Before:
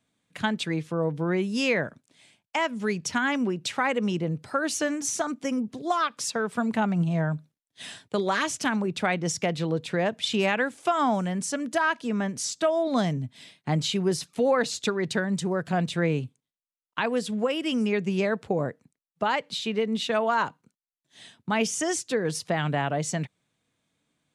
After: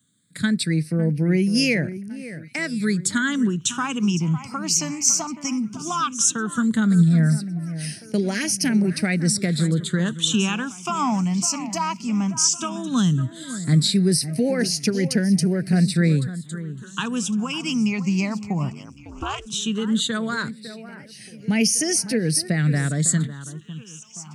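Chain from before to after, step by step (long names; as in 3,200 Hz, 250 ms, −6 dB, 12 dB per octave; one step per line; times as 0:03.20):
high-pass filter 150 Hz
bass and treble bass +12 dB, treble +14 dB
delay that swaps between a low-pass and a high-pass 554 ms, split 2,100 Hz, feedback 66%, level −13 dB
all-pass phaser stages 8, 0.15 Hz, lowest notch 480–1,100 Hz
0:18.70–0:19.45: ring modulation 38 Hz → 210 Hz
level +2 dB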